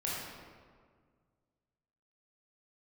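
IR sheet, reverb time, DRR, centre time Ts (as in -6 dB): 1.8 s, -6.5 dB, 104 ms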